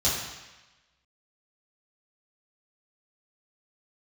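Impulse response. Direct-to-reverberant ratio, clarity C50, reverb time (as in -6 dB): -8.5 dB, 2.0 dB, 1.1 s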